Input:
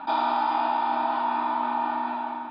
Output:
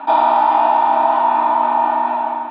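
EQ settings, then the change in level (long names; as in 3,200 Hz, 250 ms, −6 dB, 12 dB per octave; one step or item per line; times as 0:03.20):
dynamic equaliser 790 Hz, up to +5 dB, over −37 dBFS, Q 1.7
loudspeaker in its box 230–4,000 Hz, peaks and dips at 280 Hz +5 dB, 400 Hz +6 dB, 620 Hz +8 dB, 1,000 Hz +5 dB, 1,900 Hz +5 dB, 2,800 Hz +4 dB
+3.0 dB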